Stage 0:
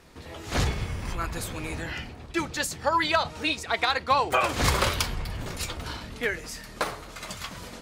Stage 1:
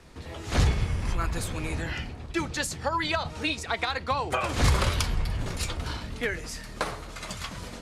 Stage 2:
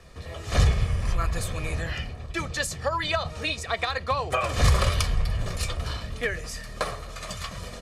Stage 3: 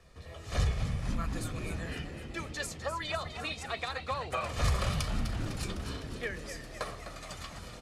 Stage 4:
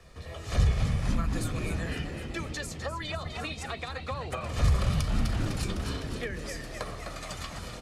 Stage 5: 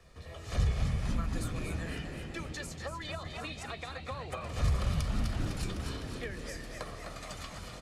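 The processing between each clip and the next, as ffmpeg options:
-filter_complex "[0:a]lowpass=f=12k:w=0.5412,lowpass=f=12k:w=1.3066,lowshelf=f=140:g=6,acrossover=split=220[a][b];[b]acompressor=threshold=-24dB:ratio=6[c];[a][c]amix=inputs=2:normalize=0"
-af "aecho=1:1:1.7:0.52"
-filter_complex "[0:a]asplit=9[a][b][c][d][e][f][g][h][i];[b]adelay=253,afreqshift=78,volume=-10dB[j];[c]adelay=506,afreqshift=156,volume=-13.9dB[k];[d]adelay=759,afreqshift=234,volume=-17.8dB[l];[e]adelay=1012,afreqshift=312,volume=-21.6dB[m];[f]adelay=1265,afreqshift=390,volume=-25.5dB[n];[g]adelay=1518,afreqshift=468,volume=-29.4dB[o];[h]adelay=1771,afreqshift=546,volume=-33.3dB[p];[i]adelay=2024,afreqshift=624,volume=-37.1dB[q];[a][j][k][l][m][n][o][p][q]amix=inputs=9:normalize=0,volume=-9dB"
-filter_complex "[0:a]acrossover=split=370[a][b];[b]acompressor=threshold=-40dB:ratio=6[c];[a][c]amix=inputs=2:normalize=0,volume=5.5dB"
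-af "aecho=1:1:235|470|705|940|1175|1410:0.282|0.147|0.0762|0.0396|0.0206|0.0107,volume=-5dB"

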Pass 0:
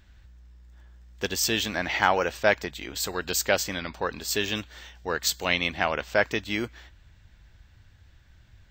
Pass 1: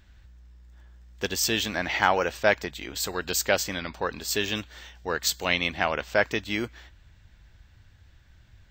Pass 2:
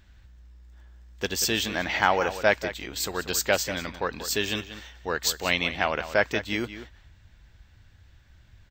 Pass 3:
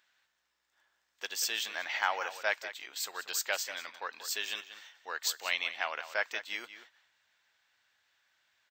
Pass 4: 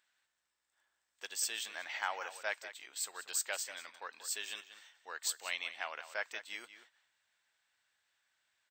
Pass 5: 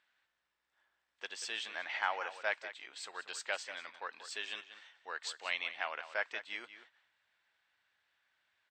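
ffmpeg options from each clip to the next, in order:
-af anull
-filter_complex "[0:a]asplit=2[a][b];[b]adelay=186.6,volume=-12dB,highshelf=f=4k:g=-4.2[c];[a][c]amix=inputs=2:normalize=0"
-af "highpass=870,volume=-6.5dB"
-af "equalizer=f=8.1k:w=5.4:g=12,volume=-6.5dB"
-af "lowpass=3.6k,volume=3dB"

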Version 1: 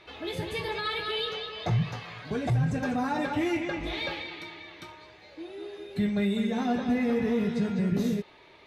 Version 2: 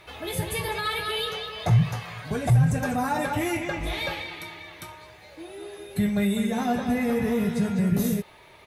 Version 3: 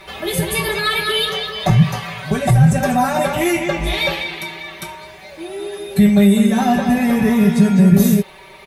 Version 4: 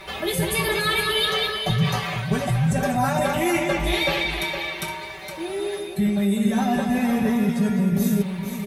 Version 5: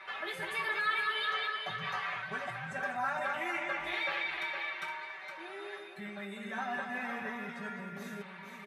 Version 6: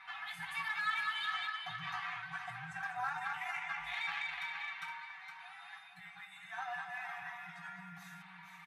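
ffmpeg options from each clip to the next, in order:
-af "firequalizer=gain_entry='entry(120,0);entry(290,-9);entry(620,-3);entry(4200,-6);entry(10000,12)':delay=0.05:min_phase=1,volume=7.5dB"
-af "aecho=1:1:5.2:0.91,volume=7.5dB"
-af "areverse,acompressor=threshold=-19dB:ratio=6,areverse,aecho=1:1:464:0.398"
-filter_complex "[0:a]bandpass=f=1.5k:t=q:w=1.9:csg=0,asplit=2[a][b];[b]alimiter=level_in=1.5dB:limit=-24dB:level=0:latency=1:release=169,volume=-1.5dB,volume=-2.5dB[c];[a][c]amix=inputs=2:normalize=0,volume=-7dB"
-af "afftfilt=real='re*(1-between(b*sr/4096,190,660))':imag='im*(1-between(b*sr/4096,190,660))':win_size=4096:overlap=0.75,aeval=exprs='0.106*(cos(1*acos(clip(val(0)/0.106,-1,1)))-cos(1*PI/2))+0.00237*(cos(7*acos(clip(val(0)/0.106,-1,1)))-cos(7*PI/2))':c=same,volume=-3.5dB"

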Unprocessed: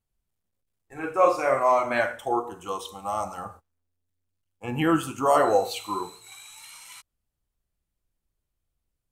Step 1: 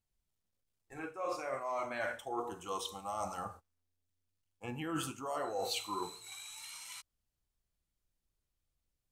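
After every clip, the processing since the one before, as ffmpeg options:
-af "areverse,acompressor=threshold=-29dB:ratio=20,areverse,equalizer=f=5.1k:w=0.78:g=4.5,volume=-5dB"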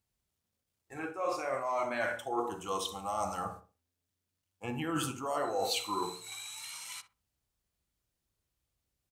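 -filter_complex "[0:a]highpass=54,asplit=2[a][b];[b]adelay=62,lowpass=f=1.1k:p=1,volume=-8dB,asplit=2[c][d];[d]adelay=62,lowpass=f=1.1k:p=1,volume=0.31,asplit=2[e][f];[f]adelay=62,lowpass=f=1.1k:p=1,volume=0.31,asplit=2[g][h];[h]adelay=62,lowpass=f=1.1k:p=1,volume=0.31[i];[a][c][e][g][i]amix=inputs=5:normalize=0,volume=4dB"

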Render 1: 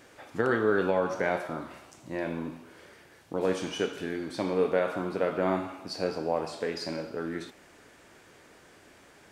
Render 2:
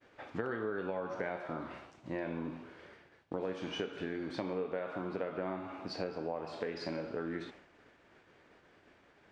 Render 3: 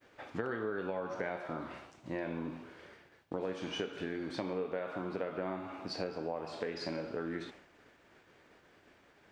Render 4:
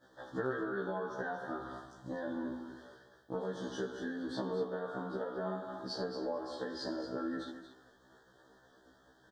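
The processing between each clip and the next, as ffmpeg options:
-af "lowpass=3.5k,agate=range=-33dB:threshold=-49dB:ratio=3:detection=peak,acompressor=threshold=-34dB:ratio=6"
-af "crystalizer=i=1:c=0"
-af "asuperstop=centerf=2400:order=20:qfactor=1.9,aecho=1:1:229:0.299,afftfilt=real='re*1.73*eq(mod(b,3),0)':imag='im*1.73*eq(mod(b,3),0)':win_size=2048:overlap=0.75,volume=2dB"

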